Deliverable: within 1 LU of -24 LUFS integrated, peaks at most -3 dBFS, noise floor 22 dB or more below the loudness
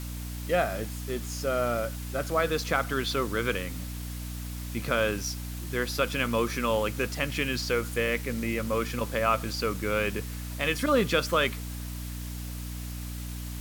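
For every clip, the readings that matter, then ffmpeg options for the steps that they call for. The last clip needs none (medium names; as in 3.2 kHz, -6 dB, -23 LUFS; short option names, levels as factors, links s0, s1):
hum 60 Hz; highest harmonic 300 Hz; hum level -34 dBFS; noise floor -37 dBFS; noise floor target -52 dBFS; loudness -29.5 LUFS; peak level -10.5 dBFS; loudness target -24.0 LUFS
-> -af "bandreject=f=60:t=h:w=6,bandreject=f=120:t=h:w=6,bandreject=f=180:t=h:w=6,bandreject=f=240:t=h:w=6,bandreject=f=300:t=h:w=6"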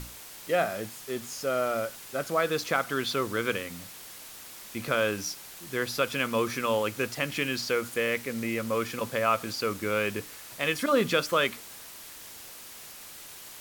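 hum not found; noise floor -46 dBFS; noise floor target -51 dBFS
-> -af "afftdn=nr=6:nf=-46"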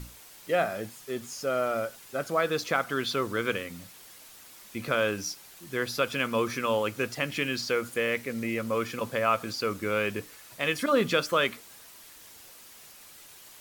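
noise floor -51 dBFS; loudness -29.0 LUFS; peak level -11.0 dBFS; loudness target -24.0 LUFS
-> -af "volume=1.78"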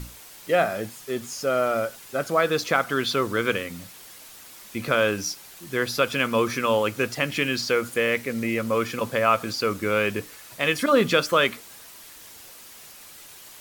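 loudness -24.0 LUFS; peak level -6.0 dBFS; noise floor -46 dBFS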